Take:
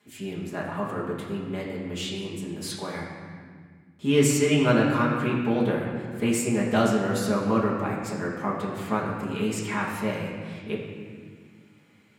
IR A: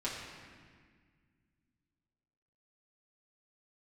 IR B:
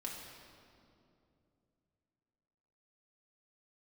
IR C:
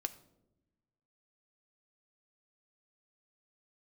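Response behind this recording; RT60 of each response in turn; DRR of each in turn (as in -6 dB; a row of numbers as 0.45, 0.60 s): A; 1.7, 2.7, 0.95 s; -8.0, -3.0, 8.5 dB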